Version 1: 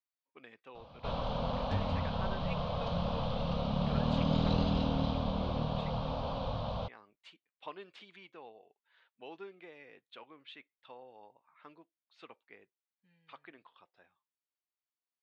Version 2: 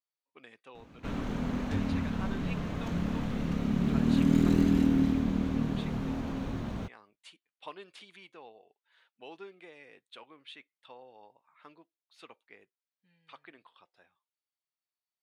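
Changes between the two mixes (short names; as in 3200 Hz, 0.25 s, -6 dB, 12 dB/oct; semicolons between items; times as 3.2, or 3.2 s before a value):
first sound: remove EQ curve 140 Hz 0 dB, 360 Hz -17 dB, 520 Hz +9 dB, 1100 Hz +7 dB, 1900 Hz -12 dB, 3200 Hz +10 dB, 4800 Hz +10 dB, 9200 Hz -21 dB; master: remove air absorption 140 m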